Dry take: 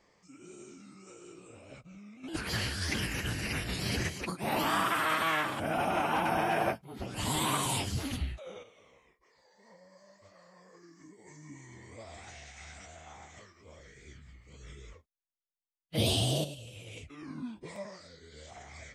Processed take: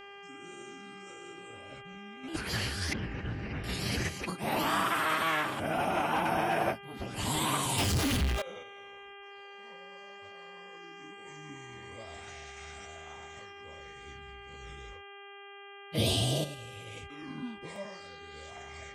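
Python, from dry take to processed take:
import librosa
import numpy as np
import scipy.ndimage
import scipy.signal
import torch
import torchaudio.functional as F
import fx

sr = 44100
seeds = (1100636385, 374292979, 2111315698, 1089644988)

y = fx.dmg_buzz(x, sr, base_hz=400.0, harmonics=8, level_db=-49.0, tilt_db=-2, odd_only=False)
y = fx.spacing_loss(y, sr, db_at_10k=38, at=(2.93, 3.64))
y = fx.power_curve(y, sr, exponent=0.35, at=(7.78, 8.42))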